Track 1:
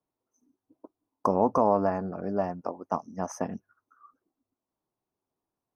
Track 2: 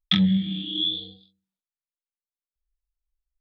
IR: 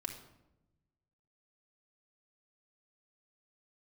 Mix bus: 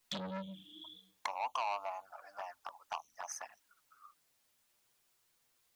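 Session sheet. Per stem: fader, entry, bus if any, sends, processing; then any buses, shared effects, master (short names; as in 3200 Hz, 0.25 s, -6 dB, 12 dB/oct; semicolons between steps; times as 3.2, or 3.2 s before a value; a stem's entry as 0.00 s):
0.0 dB, 0.00 s, no send, inverse Chebyshev high-pass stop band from 440 Hz, stop band 40 dB; high shelf 6100 Hz +4 dB
-9.0 dB, 0.00 s, no send, ensemble effect; auto duck -20 dB, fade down 1.55 s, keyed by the first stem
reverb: off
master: requantised 12-bit, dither triangular; envelope flanger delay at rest 9 ms, full sweep at -35 dBFS; core saturation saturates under 3000 Hz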